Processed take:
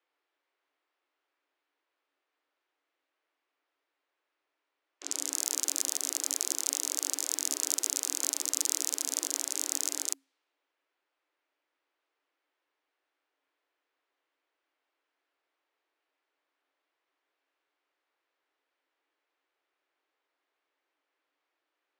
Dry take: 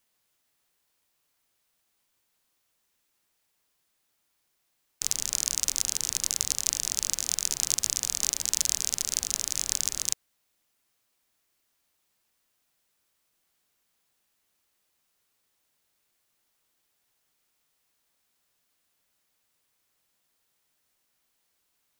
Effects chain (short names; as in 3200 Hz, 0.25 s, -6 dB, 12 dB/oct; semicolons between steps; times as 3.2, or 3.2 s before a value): low-pass opened by the level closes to 2100 Hz, open at -28 dBFS; frequency shift +270 Hz; transient shaper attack -5 dB, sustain 0 dB